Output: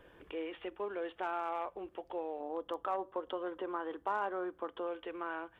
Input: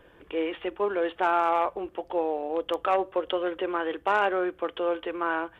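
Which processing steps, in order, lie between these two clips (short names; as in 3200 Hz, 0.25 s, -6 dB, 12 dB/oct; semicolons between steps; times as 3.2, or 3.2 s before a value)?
2.4–4.87 fifteen-band EQ 250 Hz +6 dB, 1000 Hz +7 dB, 2500 Hz -8 dB; compressor 1.5:1, threshold -46 dBFS, peak gain reduction 11 dB; gain -4 dB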